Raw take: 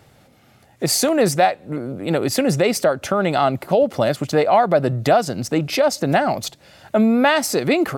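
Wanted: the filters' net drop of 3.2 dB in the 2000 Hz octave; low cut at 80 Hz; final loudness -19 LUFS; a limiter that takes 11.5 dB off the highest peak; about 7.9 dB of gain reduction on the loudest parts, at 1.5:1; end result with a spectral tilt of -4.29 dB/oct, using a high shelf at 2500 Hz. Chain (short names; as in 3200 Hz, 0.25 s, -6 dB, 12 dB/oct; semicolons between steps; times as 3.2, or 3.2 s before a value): HPF 80 Hz; bell 2000 Hz -7.5 dB; high shelf 2500 Hz +7 dB; compressor 1.5:1, threshold -34 dBFS; gain +10.5 dB; limiter -9.5 dBFS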